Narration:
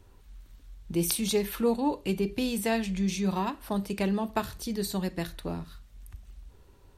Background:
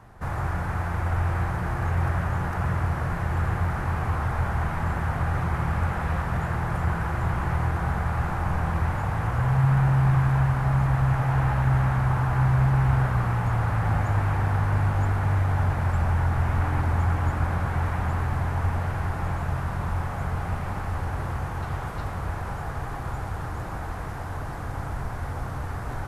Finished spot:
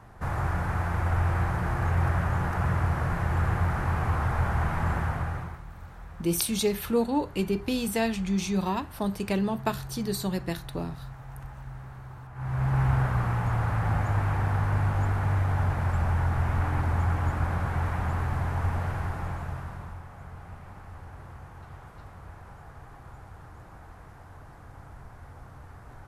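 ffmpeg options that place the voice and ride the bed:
ffmpeg -i stem1.wav -i stem2.wav -filter_complex "[0:a]adelay=5300,volume=1dB[link_01];[1:a]volume=17.5dB,afade=type=out:start_time=4.95:duration=0.66:silence=0.1,afade=type=in:start_time=12.34:duration=0.47:silence=0.125893,afade=type=out:start_time=18.89:duration=1.12:silence=0.237137[link_02];[link_01][link_02]amix=inputs=2:normalize=0" out.wav

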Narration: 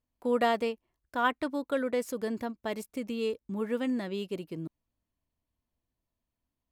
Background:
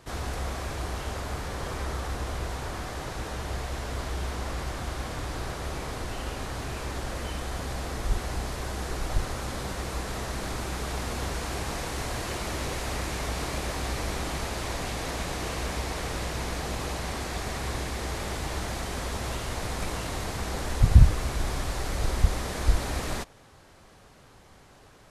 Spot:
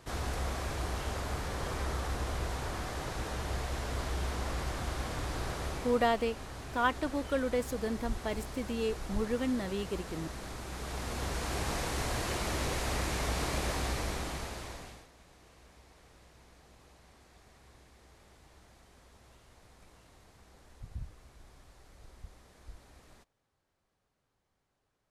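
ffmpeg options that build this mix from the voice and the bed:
ffmpeg -i stem1.wav -i stem2.wav -filter_complex "[0:a]adelay=5600,volume=-1.5dB[link_01];[1:a]volume=5.5dB,afade=type=out:start_time=5.62:duration=0.49:silence=0.446684,afade=type=in:start_time=10.64:duration=1.05:silence=0.398107,afade=type=out:start_time=13.72:duration=1.36:silence=0.0530884[link_02];[link_01][link_02]amix=inputs=2:normalize=0" out.wav

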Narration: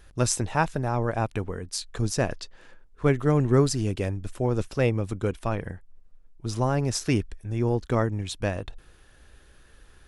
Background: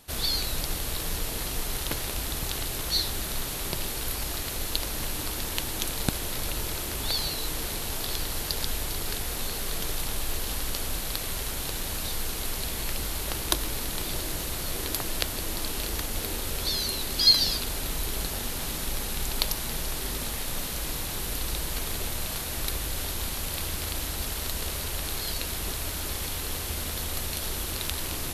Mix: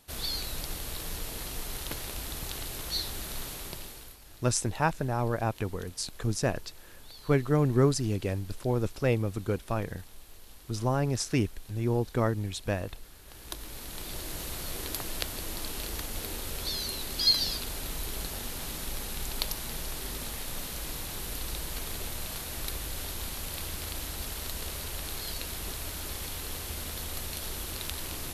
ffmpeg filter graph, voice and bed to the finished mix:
ffmpeg -i stem1.wav -i stem2.wav -filter_complex "[0:a]adelay=4250,volume=-3dB[link_01];[1:a]volume=10.5dB,afade=type=out:start_time=3.46:duration=0.72:silence=0.16788,afade=type=in:start_time=13.24:duration=1.23:silence=0.149624[link_02];[link_01][link_02]amix=inputs=2:normalize=0" out.wav

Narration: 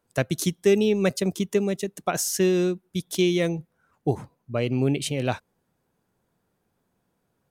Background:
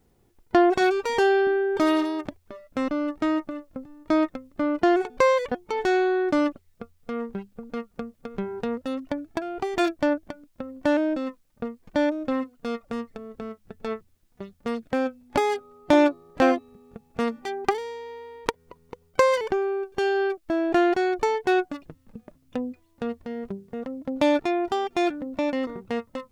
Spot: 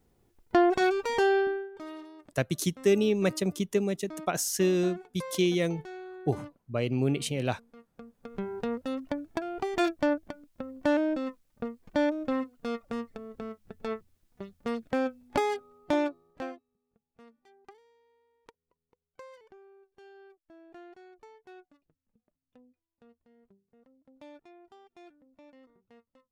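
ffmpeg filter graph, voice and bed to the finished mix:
ffmpeg -i stem1.wav -i stem2.wav -filter_complex "[0:a]adelay=2200,volume=-4dB[link_01];[1:a]volume=13.5dB,afade=type=out:start_time=1.38:duration=0.32:silence=0.141254,afade=type=in:start_time=7.89:duration=0.61:silence=0.133352,afade=type=out:start_time=15.25:duration=1.38:silence=0.0501187[link_02];[link_01][link_02]amix=inputs=2:normalize=0" out.wav

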